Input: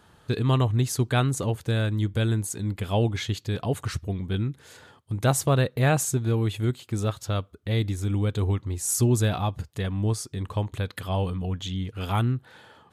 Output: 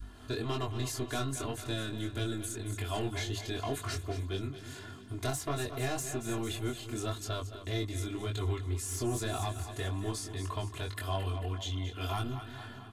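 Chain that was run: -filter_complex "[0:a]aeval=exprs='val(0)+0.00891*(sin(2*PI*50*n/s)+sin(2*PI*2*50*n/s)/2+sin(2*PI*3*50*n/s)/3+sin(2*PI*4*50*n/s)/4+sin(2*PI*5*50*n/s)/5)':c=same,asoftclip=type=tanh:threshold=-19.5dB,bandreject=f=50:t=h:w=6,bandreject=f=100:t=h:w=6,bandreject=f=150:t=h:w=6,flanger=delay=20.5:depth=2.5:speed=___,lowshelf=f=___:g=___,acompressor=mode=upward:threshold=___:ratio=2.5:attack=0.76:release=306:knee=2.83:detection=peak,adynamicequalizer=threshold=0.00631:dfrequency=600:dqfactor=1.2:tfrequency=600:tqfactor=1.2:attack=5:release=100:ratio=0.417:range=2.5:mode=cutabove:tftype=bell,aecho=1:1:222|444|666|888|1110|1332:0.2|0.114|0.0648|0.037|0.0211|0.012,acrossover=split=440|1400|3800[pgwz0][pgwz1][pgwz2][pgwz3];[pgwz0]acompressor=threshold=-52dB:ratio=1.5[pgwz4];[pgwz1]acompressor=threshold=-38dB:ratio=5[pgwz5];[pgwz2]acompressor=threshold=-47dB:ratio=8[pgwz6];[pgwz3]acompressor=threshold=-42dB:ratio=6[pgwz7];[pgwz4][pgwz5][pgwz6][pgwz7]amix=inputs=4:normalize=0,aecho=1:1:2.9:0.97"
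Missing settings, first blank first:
1.8, 190, 5.5, -42dB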